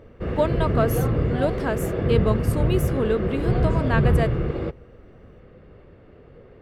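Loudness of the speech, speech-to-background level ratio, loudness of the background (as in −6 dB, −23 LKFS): −27.0 LKFS, −3.0 dB, −24.0 LKFS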